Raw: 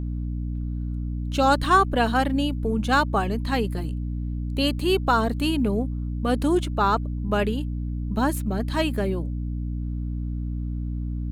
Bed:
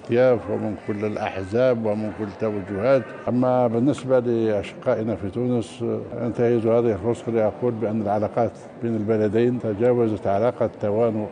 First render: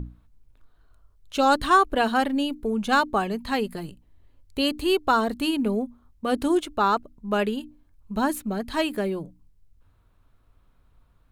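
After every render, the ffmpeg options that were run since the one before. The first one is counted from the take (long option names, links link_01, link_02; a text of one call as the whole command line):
ffmpeg -i in.wav -af "bandreject=frequency=60:width_type=h:width=6,bandreject=frequency=120:width_type=h:width=6,bandreject=frequency=180:width_type=h:width=6,bandreject=frequency=240:width_type=h:width=6,bandreject=frequency=300:width_type=h:width=6" out.wav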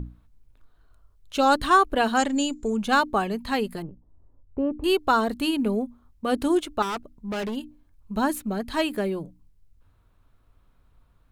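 ffmpeg -i in.wav -filter_complex "[0:a]asettb=1/sr,asplit=3[link_01][link_02][link_03];[link_01]atrim=end=2.174[link_04];[link_02]atrim=start=2.17:end=2.77,asetpts=PTS-STARTPTS,afade=type=in:duration=0.004:curve=qsin,afade=type=out:start_time=0.596:duration=0.004:curve=qsin,lowpass=frequency=7100:width_type=q:width=16[link_05];[link_03]atrim=start=2.766[link_06];[link_04][link_05]acrossfade=duration=0.004:curve1=hsin:curve2=qsin[link_07];[link_07][link_06]acrossfade=duration=0.004:curve1=qsin:curve2=hsin,asettb=1/sr,asplit=3[link_08][link_09][link_10];[link_08]atrim=end=3.824[link_11];[link_09]atrim=start=3.82:end=4.84,asetpts=PTS-STARTPTS,afade=type=in:duration=0.004:curve=qsin,afade=type=out:start_time=1.016:duration=0.004:curve=qsin,lowpass=frequency=1100:width=0.5412,lowpass=frequency=1100:width=1.3066[link_12];[link_10]atrim=start=4.836[link_13];[link_11][link_12]acrossfade=duration=0.004:curve1=hsin:curve2=qsin[link_14];[link_14][link_13]acrossfade=duration=0.004:curve1=qsin:curve2=hsin,asettb=1/sr,asplit=3[link_15][link_16][link_17];[link_15]atrim=end=6.824[link_18];[link_16]atrim=start=6.82:end=7.56,asetpts=PTS-STARTPTS,afade=type=in:duration=0.004:curve=qsin,afade=type=out:start_time=0.736:duration=0.004:curve=qsin,asoftclip=type=hard:threshold=-27dB[link_19];[link_17]atrim=start=7.556[link_20];[link_18][link_19]acrossfade=duration=0.004:curve1=hsin:curve2=qsin[link_21];[link_21][link_20]acrossfade=duration=0.004:curve1=qsin:curve2=hsin" out.wav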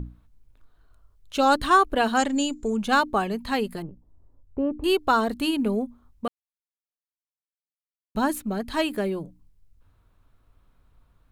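ffmpeg -i in.wav -filter_complex "[0:a]asplit=3[link_01][link_02][link_03];[link_01]atrim=end=6.28,asetpts=PTS-STARTPTS,afade=type=out:start_time=6.276:duration=0.004:curve=hsin[link_04];[link_02]atrim=start=6.28:end=8.15,asetpts=PTS-STARTPTS,volume=0[link_05];[link_03]atrim=start=8.15,asetpts=PTS-STARTPTS,afade=type=in:duration=0.004:curve=hsin[link_06];[link_04][link_05][link_06]concat=n=3:v=0:a=1" out.wav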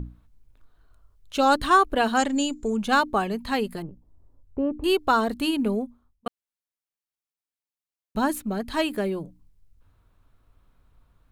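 ffmpeg -i in.wav -filter_complex "[0:a]asplit=2[link_01][link_02];[link_01]atrim=end=6.26,asetpts=PTS-STARTPTS,afade=type=out:start_time=5.72:duration=0.54[link_03];[link_02]atrim=start=6.26,asetpts=PTS-STARTPTS,afade=type=in:duration=0.004:curve=hsin[link_04];[link_03][link_04]concat=n=2:v=0:a=1" out.wav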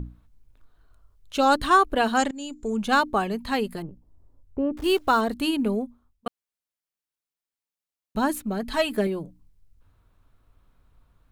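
ffmpeg -i in.wav -filter_complex "[0:a]asettb=1/sr,asplit=3[link_01][link_02][link_03];[link_01]atrim=end=4.774[link_04];[link_02]atrim=start=4.77:end=5.21,asetpts=PTS-STARTPTS,afade=type=in:duration=0.004:curve=qsin,afade=type=out:start_time=0.436:duration=0.004:curve=qsin,acrusher=bits=8:dc=4:mix=0:aa=0.000001[link_05];[link_03]atrim=start=5.206[link_06];[link_04][link_05]acrossfade=duration=0.004:curve1=hsin:curve2=qsin[link_07];[link_07][link_06]acrossfade=duration=0.004:curve1=qsin:curve2=hsin,asettb=1/sr,asplit=3[link_08][link_09][link_10];[link_08]atrim=end=8.624[link_11];[link_09]atrim=start=8.62:end=9.07,asetpts=PTS-STARTPTS,afade=type=in:duration=0.004:curve=qsin,afade=type=out:start_time=0.446:duration=0.004:curve=qsin,aecho=1:1:4.6:0.65,atrim=end_sample=19845[link_12];[link_10]atrim=start=9.066[link_13];[link_11][link_12]acrossfade=duration=0.004:curve1=hsin:curve2=qsin[link_14];[link_14][link_13]acrossfade=duration=0.004:curve1=qsin:curve2=hsin,asplit=2[link_15][link_16];[link_15]atrim=end=2.31,asetpts=PTS-STARTPTS,afade=type=out:start_time=2.306:duration=0.004:curve=hsin:silence=0.0944061[link_17];[link_16]atrim=start=2.31,asetpts=PTS-STARTPTS,afade=type=in:duration=0.49:silence=0.0944061[link_18];[link_17][link_18]concat=n=2:v=0:a=1" out.wav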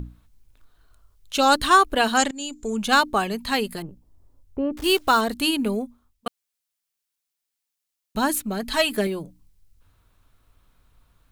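ffmpeg -i in.wav -af "highshelf=frequency=2000:gain=9.5" out.wav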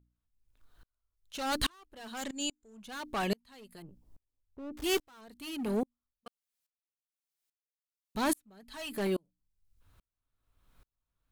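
ffmpeg -i in.wav -af "asoftclip=type=hard:threshold=-22.5dB,aeval=exprs='val(0)*pow(10,-38*if(lt(mod(-1.2*n/s,1),2*abs(-1.2)/1000),1-mod(-1.2*n/s,1)/(2*abs(-1.2)/1000),(mod(-1.2*n/s,1)-2*abs(-1.2)/1000)/(1-2*abs(-1.2)/1000))/20)':channel_layout=same" out.wav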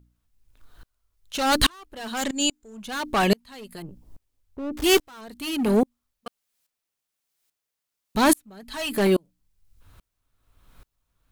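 ffmpeg -i in.wav -af "volume=11.5dB" out.wav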